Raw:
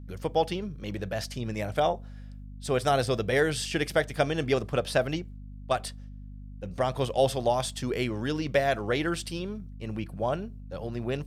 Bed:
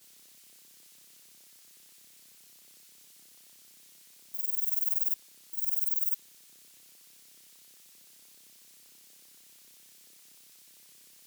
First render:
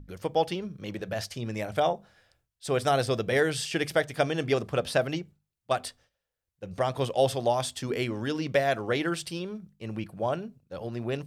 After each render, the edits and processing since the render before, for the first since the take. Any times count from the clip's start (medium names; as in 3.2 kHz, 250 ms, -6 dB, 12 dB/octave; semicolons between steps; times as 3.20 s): hum notches 50/100/150/200/250 Hz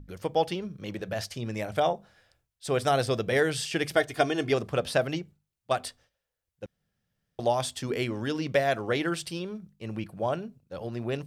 3.96–4.51 s: comb 2.8 ms; 6.66–7.39 s: room tone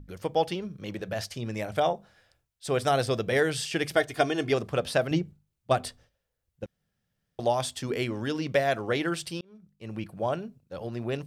5.11–6.64 s: bass shelf 420 Hz +9.5 dB; 9.41–10.05 s: fade in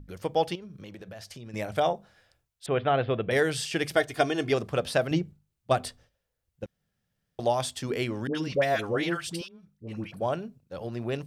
0.55–1.54 s: compression, threshold -40 dBFS; 2.66–3.31 s: steep low-pass 3.3 kHz 48 dB/octave; 8.27–10.21 s: phase dispersion highs, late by 78 ms, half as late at 800 Hz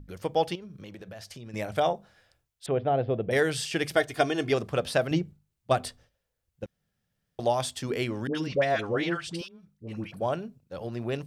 2.71–3.33 s: high-order bell 2.1 kHz -11 dB 2.3 oct; 8.47–9.39 s: Bessel low-pass 5.9 kHz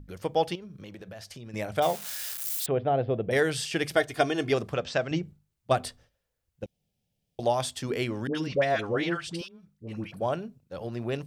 1.82–2.66 s: zero-crossing glitches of -25.5 dBFS; 4.74–5.23 s: rippled Chebyshev low-pass 7.9 kHz, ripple 3 dB; 6.64–7.43 s: high-order bell 1.4 kHz -15 dB 1.1 oct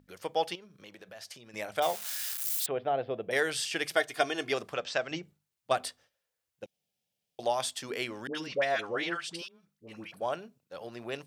high-pass 780 Hz 6 dB/octave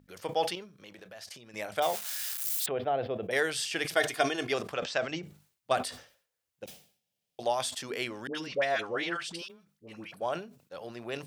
decay stretcher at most 120 dB/s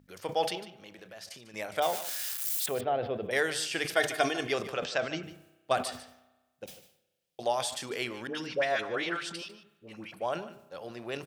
delay 148 ms -15 dB; spring tank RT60 1.2 s, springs 32 ms, chirp 55 ms, DRR 17.5 dB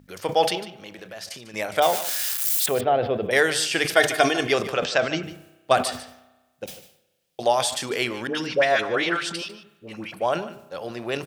trim +9 dB; peak limiter -3 dBFS, peak gain reduction 1 dB